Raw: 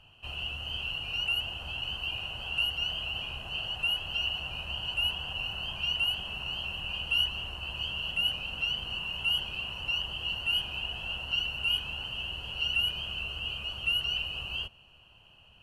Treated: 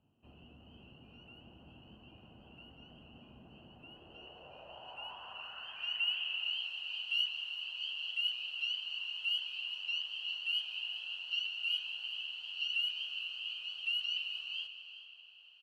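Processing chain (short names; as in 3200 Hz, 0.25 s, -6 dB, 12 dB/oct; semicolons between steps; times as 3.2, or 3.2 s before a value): echo 0.385 s -13.5 dB; band-pass sweep 250 Hz -> 4000 Hz, 3.74–6.7; digital reverb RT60 4.9 s, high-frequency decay 0.65×, pre-delay 0.1 s, DRR 9 dB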